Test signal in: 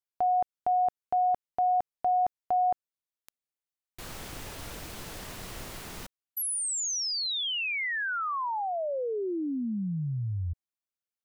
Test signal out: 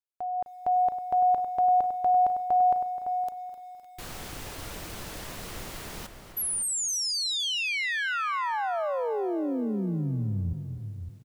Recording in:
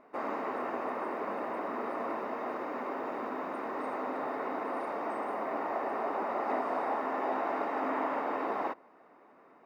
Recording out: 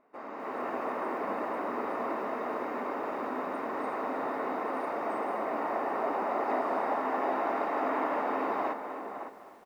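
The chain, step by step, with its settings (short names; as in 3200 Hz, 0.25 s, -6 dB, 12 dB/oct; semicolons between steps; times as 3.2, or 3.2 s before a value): AGC gain up to 10 dB; outdoor echo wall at 96 m, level -8 dB; lo-fi delay 0.256 s, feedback 55%, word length 8-bit, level -13 dB; gain -8.5 dB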